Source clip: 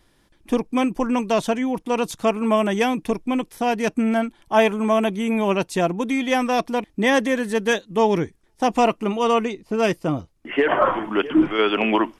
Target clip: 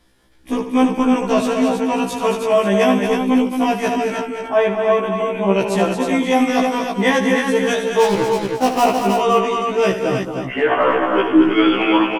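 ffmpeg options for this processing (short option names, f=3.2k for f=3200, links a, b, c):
-filter_complex "[0:a]asettb=1/sr,asplit=3[a][b][c];[a]atrim=end=4.164[d];[b]atrim=start=4.16:end=5.55,asetpts=PTS-STARTPTS,afade=t=in:d=0.004:c=qsin,afade=t=out:st=1.386:d=0.004:c=qsin,lowpass=f=1.7k:p=1[e];[c]atrim=start=5.546[f];[d][e]acrossfade=d=0.004:c1=hsin:c2=qsin[g];[g][f]acrossfade=d=0.004:c1=qsin:c2=hsin,asplit=3[h][i][j];[h]afade=t=out:st=8:d=0.02[k];[i]acrusher=bits=3:mix=0:aa=0.5,afade=t=in:st=8:d=0.02,afade=t=out:st=8.84:d=0.02[l];[j]afade=t=in:st=8.84:d=0.02[m];[k][l][m]amix=inputs=3:normalize=0,asplit=2[n][o];[o]aecho=0:1:75|146|222|316|532:0.316|0.158|0.473|0.562|0.224[p];[n][p]amix=inputs=2:normalize=0,afftfilt=real='re*1.73*eq(mod(b,3),0)':imag='im*1.73*eq(mod(b,3),0)':win_size=2048:overlap=0.75,volume=4dB"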